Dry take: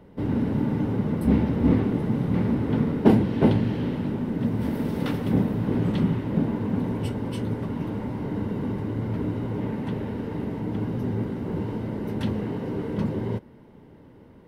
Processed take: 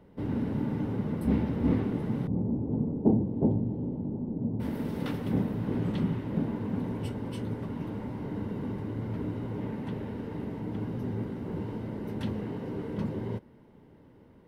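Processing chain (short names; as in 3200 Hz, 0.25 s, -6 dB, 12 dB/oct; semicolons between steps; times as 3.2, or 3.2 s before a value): 2.27–4.6 EQ curve 300 Hz 0 dB, 840 Hz -5 dB, 1600 Hz -29 dB; gain -6 dB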